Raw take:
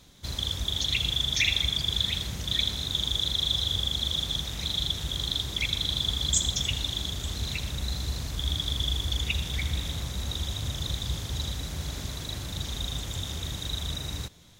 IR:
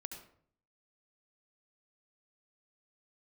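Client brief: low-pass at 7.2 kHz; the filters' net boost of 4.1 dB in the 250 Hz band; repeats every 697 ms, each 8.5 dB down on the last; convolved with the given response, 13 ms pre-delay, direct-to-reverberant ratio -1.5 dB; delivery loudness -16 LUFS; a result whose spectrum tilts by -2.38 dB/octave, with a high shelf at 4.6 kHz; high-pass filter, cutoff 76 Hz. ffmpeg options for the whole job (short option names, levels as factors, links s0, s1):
-filter_complex "[0:a]highpass=76,lowpass=7200,equalizer=f=250:t=o:g=6,highshelf=f=4600:g=6,aecho=1:1:697|1394|2091|2788:0.376|0.143|0.0543|0.0206,asplit=2[s0][s1];[1:a]atrim=start_sample=2205,adelay=13[s2];[s1][s2]afir=irnorm=-1:irlink=0,volume=1.68[s3];[s0][s3]amix=inputs=2:normalize=0,volume=2.11"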